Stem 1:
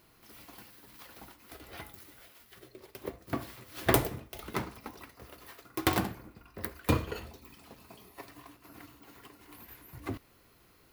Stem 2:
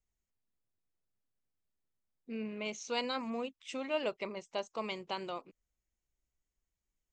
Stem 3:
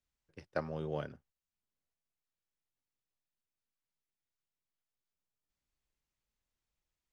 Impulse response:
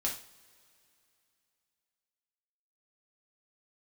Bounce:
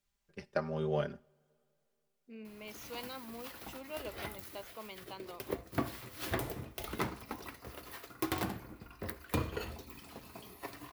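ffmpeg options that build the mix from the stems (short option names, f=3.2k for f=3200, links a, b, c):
-filter_complex "[0:a]adelay=2450,volume=2.5dB[a];[1:a]volume=-9.5dB[b];[2:a]aecho=1:1:5:0.75,volume=3dB,asplit=2[c][d];[d]volume=-19dB[e];[3:a]atrim=start_sample=2205[f];[e][f]afir=irnorm=-1:irlink=0[g];[a][b][c][g]amix=inputs=4:normalize=0,alimiter=limit=-20dB:level=0:latency=1:release=409"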